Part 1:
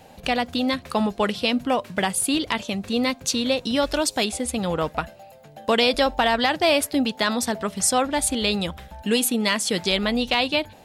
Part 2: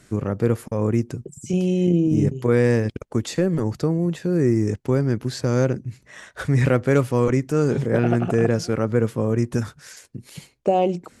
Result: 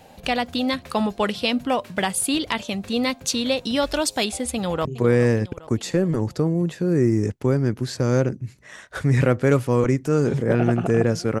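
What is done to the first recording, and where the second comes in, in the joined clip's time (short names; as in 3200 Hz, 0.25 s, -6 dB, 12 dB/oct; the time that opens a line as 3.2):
part 1
4.54–4.85 echo throw 0.41 s, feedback 55%, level -15 dB
4.85 switch to part 2 from 2.29 s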